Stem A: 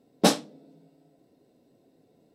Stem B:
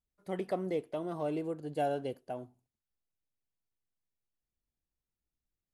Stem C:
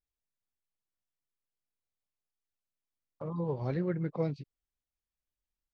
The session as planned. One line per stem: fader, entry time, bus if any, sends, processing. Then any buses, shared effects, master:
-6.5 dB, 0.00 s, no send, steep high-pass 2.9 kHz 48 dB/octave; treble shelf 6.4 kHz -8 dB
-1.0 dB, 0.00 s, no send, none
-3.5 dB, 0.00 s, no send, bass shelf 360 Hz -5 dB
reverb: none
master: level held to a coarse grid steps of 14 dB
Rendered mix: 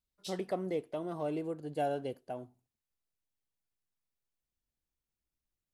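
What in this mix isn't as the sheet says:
stem A -6.5 dB -> -16.0 dB; stem C: muted; master: missing level held to a coarse grid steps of 14 dB

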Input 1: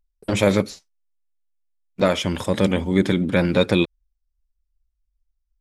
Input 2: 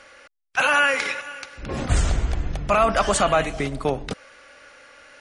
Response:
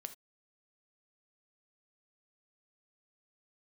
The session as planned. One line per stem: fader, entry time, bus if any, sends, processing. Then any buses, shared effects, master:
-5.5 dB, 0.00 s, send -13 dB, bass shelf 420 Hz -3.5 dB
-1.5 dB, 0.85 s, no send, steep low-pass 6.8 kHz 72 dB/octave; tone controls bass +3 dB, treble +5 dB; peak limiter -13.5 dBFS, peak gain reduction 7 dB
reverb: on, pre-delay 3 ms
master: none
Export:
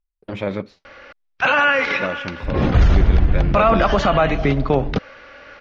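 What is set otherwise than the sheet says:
stem 2 -1.5 dB -> +8.5 dB; master: extra distance through air 290 m

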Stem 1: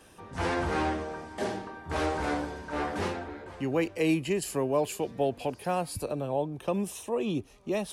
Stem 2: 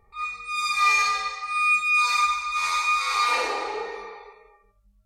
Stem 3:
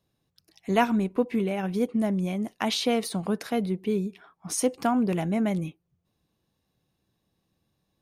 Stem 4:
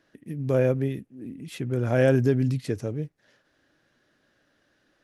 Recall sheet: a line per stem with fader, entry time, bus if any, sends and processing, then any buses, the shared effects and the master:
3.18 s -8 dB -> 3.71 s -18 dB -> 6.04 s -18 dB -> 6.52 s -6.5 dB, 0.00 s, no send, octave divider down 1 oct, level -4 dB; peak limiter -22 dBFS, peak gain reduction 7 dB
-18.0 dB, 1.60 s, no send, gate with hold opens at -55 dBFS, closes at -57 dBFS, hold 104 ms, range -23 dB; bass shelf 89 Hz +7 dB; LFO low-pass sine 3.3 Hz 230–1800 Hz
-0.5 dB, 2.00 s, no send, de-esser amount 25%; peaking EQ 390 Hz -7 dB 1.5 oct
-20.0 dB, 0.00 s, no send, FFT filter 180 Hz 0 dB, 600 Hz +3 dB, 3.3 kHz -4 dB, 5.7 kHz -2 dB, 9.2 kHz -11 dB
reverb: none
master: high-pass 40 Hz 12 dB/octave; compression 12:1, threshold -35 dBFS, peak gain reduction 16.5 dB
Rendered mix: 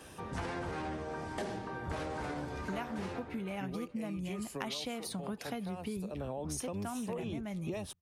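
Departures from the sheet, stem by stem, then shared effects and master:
stem 1 -8.0 dB -> +3.5 dB; stem 2 -18.0 dB -> -26.5 dB

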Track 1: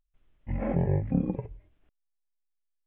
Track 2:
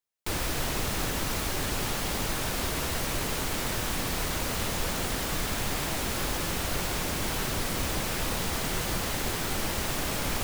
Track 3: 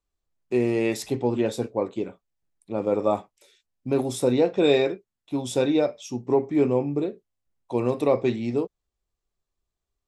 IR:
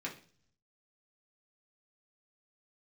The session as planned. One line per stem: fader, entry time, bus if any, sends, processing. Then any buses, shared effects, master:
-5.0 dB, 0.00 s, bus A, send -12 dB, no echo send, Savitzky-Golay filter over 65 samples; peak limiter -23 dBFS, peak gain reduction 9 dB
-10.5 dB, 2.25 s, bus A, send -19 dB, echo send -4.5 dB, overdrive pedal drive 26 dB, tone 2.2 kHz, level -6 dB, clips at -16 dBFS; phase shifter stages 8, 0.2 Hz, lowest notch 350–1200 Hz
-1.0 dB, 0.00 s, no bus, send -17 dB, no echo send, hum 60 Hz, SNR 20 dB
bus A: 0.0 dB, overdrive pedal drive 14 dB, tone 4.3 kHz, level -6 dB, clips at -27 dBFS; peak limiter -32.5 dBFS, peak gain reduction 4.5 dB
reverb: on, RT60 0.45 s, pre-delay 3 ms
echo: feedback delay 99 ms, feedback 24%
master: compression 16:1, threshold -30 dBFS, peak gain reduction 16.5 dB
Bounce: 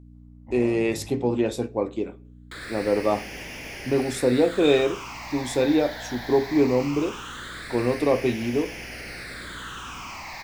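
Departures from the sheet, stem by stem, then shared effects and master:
stem 3: send -17 dB -> -11 dB; master: missing compression 16:1, threshold -30 dBFS, peak gain reduction 16.5 dB

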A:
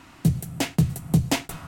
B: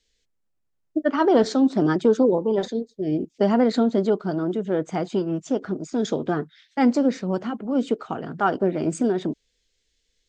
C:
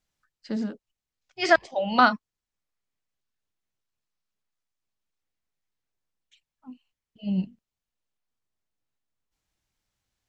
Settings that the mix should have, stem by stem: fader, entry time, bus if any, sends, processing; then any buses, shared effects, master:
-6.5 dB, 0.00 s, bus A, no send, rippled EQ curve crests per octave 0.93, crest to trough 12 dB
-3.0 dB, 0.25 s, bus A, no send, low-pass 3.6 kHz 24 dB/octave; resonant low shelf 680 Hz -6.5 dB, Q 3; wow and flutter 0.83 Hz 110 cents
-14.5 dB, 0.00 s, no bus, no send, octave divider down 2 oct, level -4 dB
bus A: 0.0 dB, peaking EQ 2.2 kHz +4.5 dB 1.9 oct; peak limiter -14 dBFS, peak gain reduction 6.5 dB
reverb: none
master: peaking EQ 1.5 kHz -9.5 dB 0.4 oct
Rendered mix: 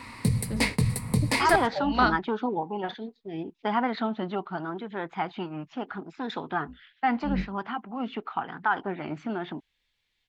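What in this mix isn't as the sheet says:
stem A -6.5 dB -> +2.0 dB; stem C -14.5 dB -> -4.5 dB; master: missing peaking EQ 1.5 kHz -9.5 dB 0.4 oct

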